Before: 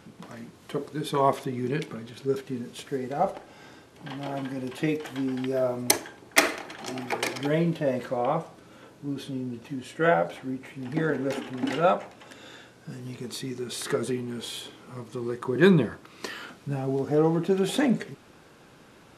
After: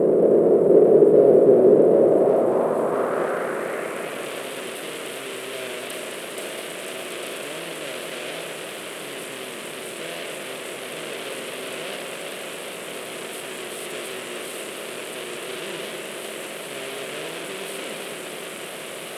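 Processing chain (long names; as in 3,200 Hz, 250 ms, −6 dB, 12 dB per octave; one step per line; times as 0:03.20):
compressor on every frequency bin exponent 0.2
Chebyshev band-stop filter 650–8,100 Hz, order 5
in parallel at −4.5 dB: fuzz pedal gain 34 dB, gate −37 dBFS
on the sum: band-pass filter sweep 450 Hz → 3,000 Hz, 0:01.77–0:04.28
feedback echo with a swinging delay time 205 ms, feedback 77%, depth 161 cents, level −7.5 dB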